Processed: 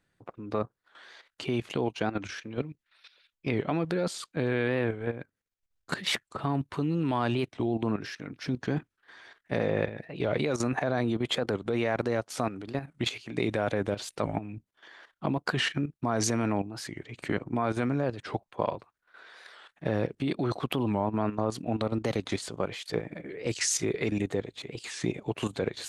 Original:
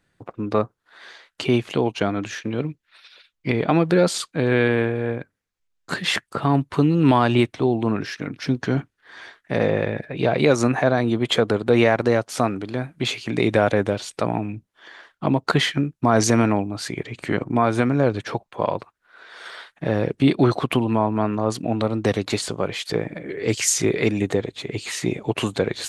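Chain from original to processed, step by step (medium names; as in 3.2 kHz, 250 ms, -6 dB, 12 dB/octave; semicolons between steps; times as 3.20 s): level held to a coarse grid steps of 12 dB; warped record 45 rpm, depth 160 cents; trim -3.5 dB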